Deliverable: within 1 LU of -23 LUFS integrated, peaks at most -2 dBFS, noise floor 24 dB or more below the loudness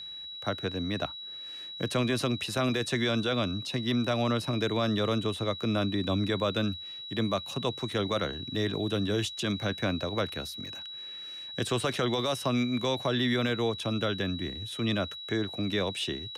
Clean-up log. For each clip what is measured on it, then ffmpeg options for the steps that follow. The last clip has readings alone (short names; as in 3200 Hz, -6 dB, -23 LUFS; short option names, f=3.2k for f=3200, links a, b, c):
steady tone 3900 Hz; tone level -39 dBFS; loudness -30.5 LUFS; peak -16.5 dBFS; loudness target -23.0 LUFS
-> -af "bandreject=f=3.9k:w=30"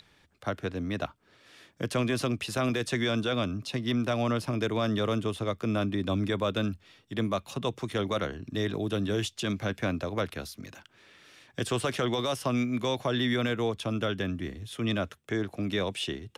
steady tone none; loudness -30.5 LUFS; peak -17.0 dBFS; loudness target -23.0 LUFS
-> -af "volume=7.5dB"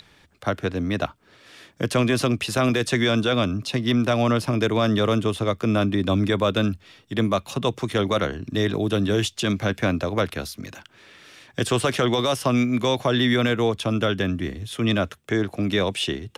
loudness -23.0 LUFS; peak -9.5 dBFS; noise floor -57 dBFS